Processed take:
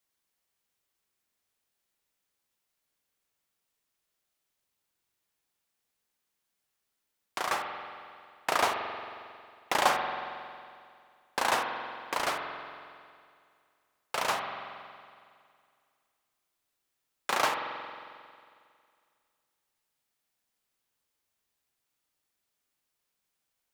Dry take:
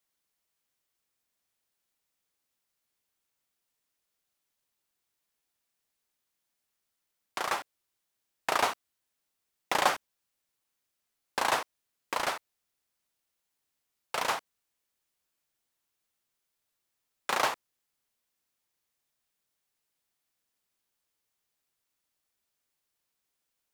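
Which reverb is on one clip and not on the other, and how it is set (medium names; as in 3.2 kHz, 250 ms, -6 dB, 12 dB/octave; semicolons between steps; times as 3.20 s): spring tank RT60 2.2 s, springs 45 ms, chirp 35 ms, DRR 4 dB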